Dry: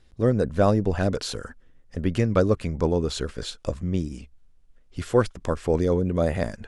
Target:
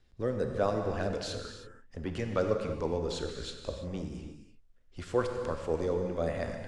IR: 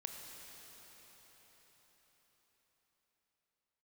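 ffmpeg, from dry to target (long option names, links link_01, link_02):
-filter_complex "[0:a]lowpass=8100,acrossover=split=290|1600[link_01][link_02][link_03];[link_01]volume=30dB,asoftclip=hard,volume=-30dB[link_04];[link_04][link_02][link_03]amix=inputs=3:normalize=0[link_05];[1:a]atrim=start_sample=2205,afade=type=out:start_time=0.39:duration=0.01,atrim=end_sample=17640[link_06];[link_05][link_06]afir=irnorm=-1:irlink=0,volume=-3.5dB"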